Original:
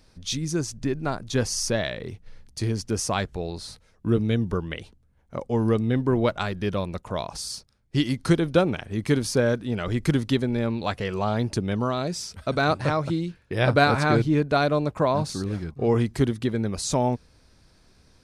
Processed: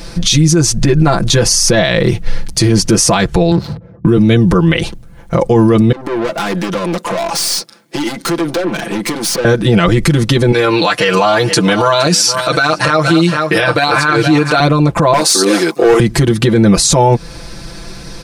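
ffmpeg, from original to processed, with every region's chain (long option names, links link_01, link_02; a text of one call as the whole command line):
ffmpeg -i in.wav -filter_complex "[0:a]asettb=1/sr,asplit=3[link_01][link_02][link_03];[link_01]atrim=end=3.514[link_04];[link_02]atrim=start=3.51:end=4.06,asetpts=PTS-STARTPTS,afade=type=in:duration=0.004:curve=qsin,afade=type=out:start_time=0.546:duration=0.004:curve=qsin,highpass=frequency=81:width=0.5412,highpass=frequency=81:width=1.3066,lowshelf=frequency=150:gain=9,adynamicsmooth=sensitivity=5.5:basefreq=530[link_05];[link_03]atrim=start=4.056[link_06];[link_04][link_05]acrossfade=duration=0.004:curve1=hsin:curve2=qsin[link_07];[link_07][link_06]acrossfade=duration=0.004:curve1=qsin:curve2=hsin,asettb=1/sr,asplit=3[link_08][link_09][link_10];[link_08]atrim=end=5.924[link_11];[link_09]atrim=start=5.92:end=9.45,asetpts=PTS-STARTPTS,afade=type=in:duration=0.004:curve=qsin,afade=type=out:start_time=3.526:duration=0.004:curve=qsin,acompressor=threshold=-30dB:ratio=16:attack=3.2:release=140:knee=1:detection=peak,highpass=frequency=220:width=0.5412,highpass=frequency=220:width=1.3066,aeval=exprs='(tanh(141*val(0)+0.15)-tanh(0.15))/141':channel_layout=same[link_12];[link_10]atrim=start=9.446[link_13];[link_11][link_12]acrossfade=duration=0.004:curve1=hsin:curve2=qsin[link_14];[link_14][link_13]acrossfade=duration=0.004:curve1=qsin:curve2=hsin,asettb=1/sr,asplit=3[link_15][link_16][link_17];[link_15]atrim=end=10.524[link_18];[link_16]atrim=start=10.52:end=14.6,asetpts=PTS-STARTPTS,afade=type=in:duration=0.004:curve=qsin,afade=type=out:start_time=4.076:duration=0.004:curve=qsin,highpass=frequency=800:poles=1,aecho=1:1:6.6:0.61,atrim=end_sample=179928,aecho=1:1:467:0.141,atrim=end_sample=179928[link_19];[link_17]atrim=start=14.596[link_20];[link_18][link_19]acrossfade=duration=0.004:curve1=hsin:curve2=qsin[link_21];[link_21][link_20]acrossfade=duration=0.004:curve1=qsin:curve2=hsin,asettb=1/sr,asplit=3[link_22][link_23][link_24];[link_22]atrim=end=15.134[link_25];[link_23]atrim=start=15.13:end=16,asetpts=PTS-STARTPTS,afade=type=in:duration=0.004:curve=qsin,afade=type=out:start_time=0.866:duration=0.004:curve=qsin,highpass=frequency=320:width=0.5412,highpass=frequency=320:width=1.3066,highshelf=frequency=5000:gain=10.5,asoftclip=type=hard:threshold=-23dB[link_26];[link_24]atrim=start=15.996[link_27];[link_25][link_26]acrossfade=duration=0.004:curve1=hsin:curve2=qsin[link_28];[link_28][link_27]acrossfade=duration=0.004:curve1=qsin:curve2=hsin,aecho=1:1:5.9:0.94,acompressor=threshold=-28dB:ratio=4,alimiter=level_in=27dB:limit=-1dB:release=50:level=0:latency=1,volume=-1dB" out.wav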